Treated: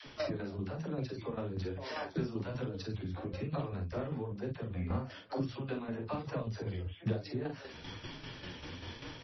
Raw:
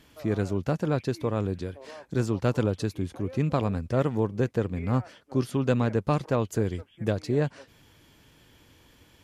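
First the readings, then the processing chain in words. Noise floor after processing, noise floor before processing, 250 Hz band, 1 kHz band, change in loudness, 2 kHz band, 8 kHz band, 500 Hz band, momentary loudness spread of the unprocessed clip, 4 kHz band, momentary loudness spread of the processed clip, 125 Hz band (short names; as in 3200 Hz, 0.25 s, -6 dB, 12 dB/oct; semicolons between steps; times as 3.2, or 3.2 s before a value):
-51 dBFS, -59 dBFS, -10.5 dB, -10.0 dB, -11.5 dB, -7.5 dB, under -10 dB, -11.5 dB, 6 LU, -2.5 dB, 8 LU, -10.5 dB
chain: in parallel at 0 dB: limiter -20 dBFS, peak gain reduction 8.5 dB; on the sum: compressor 16:1, threshold -34 dBFS, peak gain reduction 19 dB; dispersion lows, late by 66 ms, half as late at 380 Hz; flange 1.1 Hz, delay 6.2 ms, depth 7.4 ms, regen +2%; vocal rider within 4 dB 0.5 s; tremolo saw down 5.1 Hz, depth 70%; early reflections 44 ms -6 dB, 55 ms -16.5 dB; gain +7 dB; MP3 24 kbps 22050 Hz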